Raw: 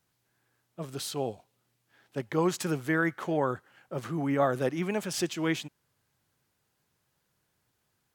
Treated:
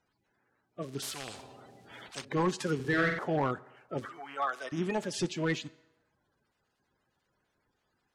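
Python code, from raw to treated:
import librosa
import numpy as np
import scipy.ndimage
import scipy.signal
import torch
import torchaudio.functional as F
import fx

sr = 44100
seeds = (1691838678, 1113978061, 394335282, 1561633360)

y = fx.spec_quant(x, sr, step_db=30)
y = fx.cheby1_highpass(y, sr, hz=1100.0, order=2, at=(4.05, 4.72))
y = np.clip(10.0 ** (22.5 / 20.0) * y, -1.0, 1.0) / 10.0 ** (22.5 / 20.0)
y = fx.air_absorb(y, sr, metres=57.0)
y = fx.room_flutter(y, sr, wall_m=8.0, rt60_s=0.69, at=(2.75, 3.19))
y = fx.rev_fdn(y, sr, rt60_s=1.1, lf_ratio=0.7, hf_ratio=0.7, size_ms=23.0, drr_db=18.0)
y = fx.spectral_comp(y, sr, ratio=4.0, at=(1.02, 2.25))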